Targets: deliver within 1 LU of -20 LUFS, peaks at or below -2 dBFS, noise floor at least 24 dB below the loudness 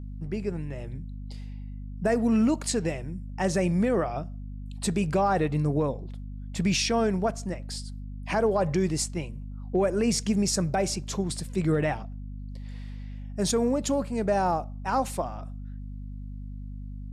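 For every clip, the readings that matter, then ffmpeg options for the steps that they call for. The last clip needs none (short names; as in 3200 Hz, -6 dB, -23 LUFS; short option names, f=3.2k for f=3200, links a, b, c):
hum 50 Hz; harmonics up to 250 Hz; hum level -35 dBFS; loudness -27.5 LUFS; peak -15.0 dBFS; loudness target -20.0 LUFS
-> -af "bandreject=f=50:t=h:w=4,bandreject=f=100:t=h:w=4,bandreject=f=150:t=h:w=4,bandreject=f=200:t=h:w=4,bandreject=f=250:t=h:w=4"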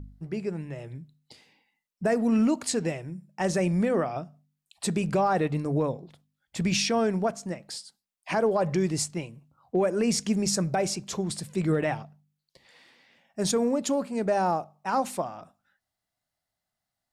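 hum none; loudness -27.5 LUFS; peak -15.0 dBFS; loudness target -20.0 LUFS
-> -af "volume=7.5dB"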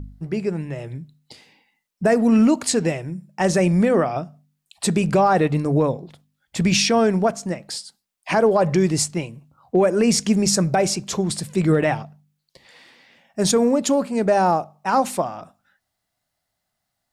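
loudness -20.0 LUFS; peak -7.5 dBFS; noise floor -78 dBFS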